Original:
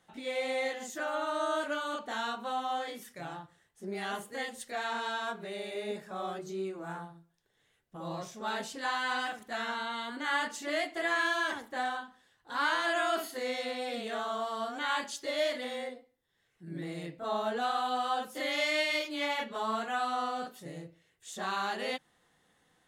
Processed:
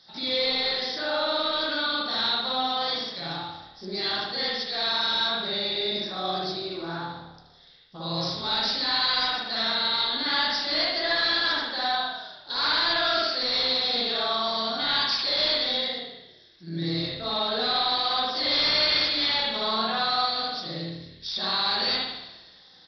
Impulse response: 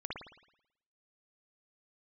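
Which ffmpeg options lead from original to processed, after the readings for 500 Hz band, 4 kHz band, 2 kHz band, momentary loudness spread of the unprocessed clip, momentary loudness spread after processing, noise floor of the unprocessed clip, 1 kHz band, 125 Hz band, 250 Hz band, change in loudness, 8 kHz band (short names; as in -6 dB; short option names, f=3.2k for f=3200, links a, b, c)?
+3.5 dB, +17.0 dB, +4.5 dB, 13 LU, 11 LU, -73 dBFS, +4.0 dB, +10.0 dB, +5.0 dB, +9.5 dB, n/a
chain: -filter_complex "[0:a]aemphasis=mode=production:type=75fm,bandreject=f=3k:w=13,asplit=2[a][b];[b]acompressor=threshold=-41dB:ratio=6,volume=-1dB[c];[a][c]amix=inputs=2:normalize=0,aexciter=amount=7:drive=8.7:freq=3.9k,aresample=11025,asoftclip=type=tanh:threshold=-20.5dB,aresample=44100,asplit=6[d][e][f][g][h][i];[e]adelay=119,afreqshift=-37,volume=-14.5dB[j];[f]adelay=238,afreqshift=-74,volume=-20dB[k];[g]adelay=357,afreqshift=-111,volume=-25.5dB[l];[h]adelay=476,afreqshift=-148,volume=-31dB[m];[i]adelay=595,afreqshift=-185,volume=-36.6dB[n];[d][j][k][l][m][n]amix=inputs=6:normalize=0[o];[1:a]atrim=start_sample=2205[p];[o][p]afir=irnorm=-1:irlink=0,volume=2.5dB"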